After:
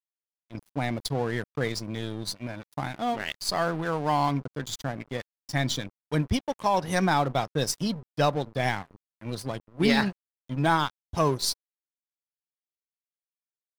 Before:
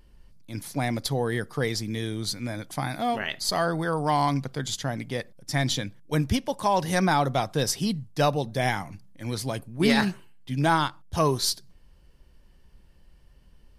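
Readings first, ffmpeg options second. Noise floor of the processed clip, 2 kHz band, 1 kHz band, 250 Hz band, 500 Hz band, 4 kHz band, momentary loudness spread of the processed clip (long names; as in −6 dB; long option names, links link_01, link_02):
below −85 dBFS, −1.5 dB, −1.0 dB, −1.5 dB, −1.5 dB, −2.0 dB, 12 LU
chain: -af "afftdn=noise_reduction=15:noise_floor=-40,aeval=exprs='val(0)+0.00126*sin(2*PI*1000*n/s)':channel_layout=same,aeval=exprs='sgn(val(0))*max(abs(val(0))-0.0133,0)':channel_layout=same"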